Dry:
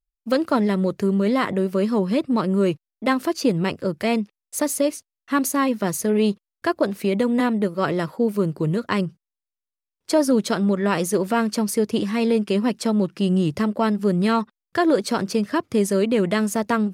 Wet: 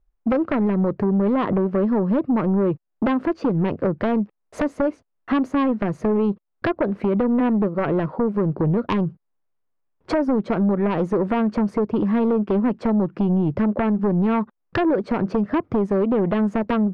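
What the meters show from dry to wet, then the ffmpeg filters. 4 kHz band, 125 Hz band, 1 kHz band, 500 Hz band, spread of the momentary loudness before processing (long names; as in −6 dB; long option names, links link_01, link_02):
below −10 dB, +2.0 dB, −1.0 dB, −0.5 dB, 5 LU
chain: -af "lowpass=1100,acompressor=threshold=-35dB:ratio=4,aeval=exprs='0.0668*sin(PI/2*1.78*val(0)/0.0668)':channel_layout=same,volume=8.5dB"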